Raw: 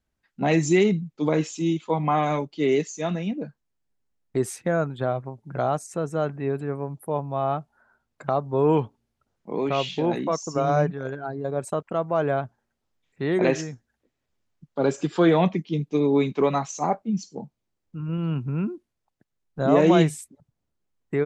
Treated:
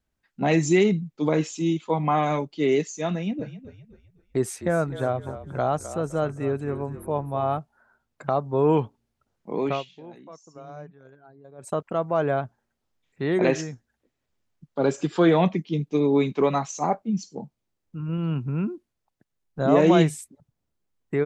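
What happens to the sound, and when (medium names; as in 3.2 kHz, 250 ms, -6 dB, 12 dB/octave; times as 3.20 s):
3.13–7.59 s: frequency-shifting echo 257 ms, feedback 39%, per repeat -40 Hz, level -13 dB
9.71–11.72 s: dip -19.5 dB, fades 0.14 s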